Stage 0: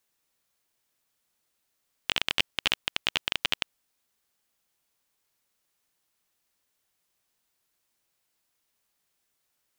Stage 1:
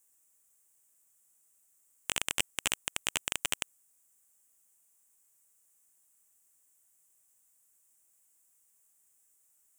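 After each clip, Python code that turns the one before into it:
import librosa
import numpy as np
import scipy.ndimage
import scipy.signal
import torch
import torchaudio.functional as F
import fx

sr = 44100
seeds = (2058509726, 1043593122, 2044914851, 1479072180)

y = fx.high_shelf_res(x, sr, hz=5900.0, db=11.0, q=3.0)
y = y * 10.0 ** (-4.0 / 20.0)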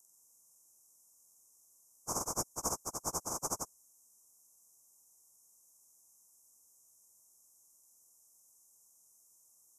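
y = fx.partial_stretch(x, sr, pct=89)
y = scipy.signal.sosfilt(scipy.signal.ellip(3, 1.0, 40, [1100.0, 6600.0], 'bandstop', fs=sr, output='sos'), y)
y = y * 10.0 ** (7.5 / 20.0)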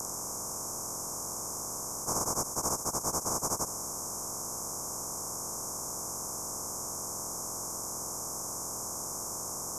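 y = fx.bin_compress(x, sr, power=0.2)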